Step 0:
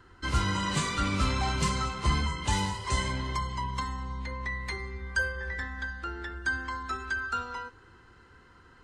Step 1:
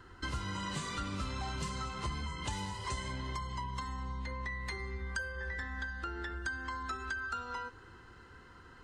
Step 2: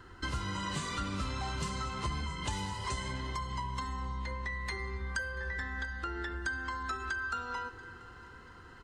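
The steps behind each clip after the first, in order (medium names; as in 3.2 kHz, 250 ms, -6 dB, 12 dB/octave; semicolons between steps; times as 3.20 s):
band-stop 2.3 kHz, Q 17; compression 5:1, threshold -37 dBFS, peak gain reduction 15 dB; trim +1 dB
feedback delay 686 ms, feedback 38%, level -22 dB; on a send at -14.5 dB: reverberation RT60 5.2 s, pre-delay 24 ms; on the sum: trim +2 dB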